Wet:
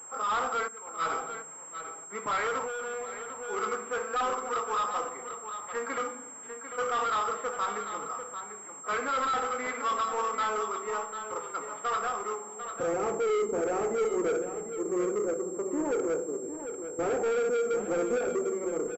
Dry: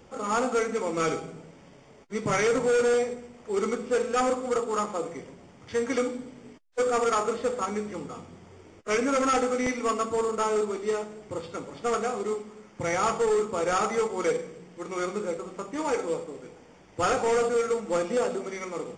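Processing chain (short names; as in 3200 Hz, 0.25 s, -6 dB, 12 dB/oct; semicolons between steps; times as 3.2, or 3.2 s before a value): band-pass sweep 1200 Hz -> 380 Hz, 12.32–12.94; soft clip -34 dBFS, distortion -7 dB; Schroeder reverb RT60 0.86 s, combs from 33 ms, DRR 16.5 dB; 0.68–1.1 gate -38 dBFS, range -15 dB; echo 0.746 s -9.5 dB; 2.64–3.36 compressor 5:1, threshold -43 dBFS, peak gain reduction 7 dB; pulse-width modulation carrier 7500 Hz; gain +8.5 dB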